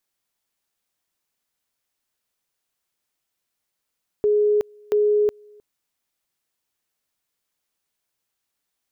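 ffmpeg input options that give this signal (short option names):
-f lavfi -i "aevalsrc='pow(10,(-15-30*gte(mod(t,0.68),0.37))/20)*sin(2*PI*418*t)':d=1.36:s=44100"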